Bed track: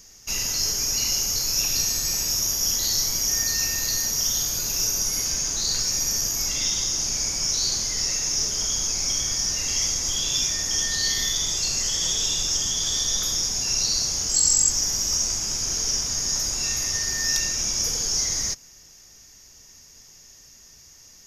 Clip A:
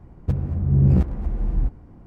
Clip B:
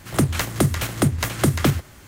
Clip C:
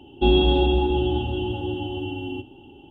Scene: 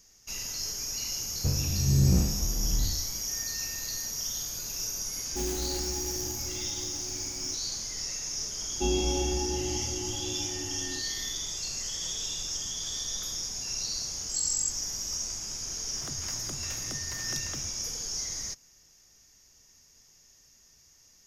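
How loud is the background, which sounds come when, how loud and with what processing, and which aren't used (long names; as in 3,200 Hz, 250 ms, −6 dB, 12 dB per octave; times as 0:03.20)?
bed track −10 dB
0:01.16: mix in A −8 dB + peak hold with a decay on every bin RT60 0.84 s
0:05.14: mix in C −16 dB + converter with an unsteady clock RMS 0.12 ms
0:08.59: mix in C −10.5 dB
0:15.89: mix in B −16 dB + downward compressor, threshold −23 dBFS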